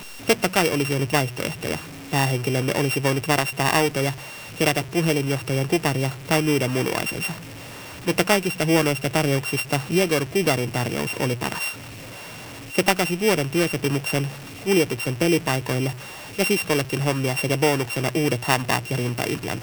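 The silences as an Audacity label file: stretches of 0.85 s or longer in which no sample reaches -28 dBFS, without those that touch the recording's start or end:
11.720000	12.740000	silence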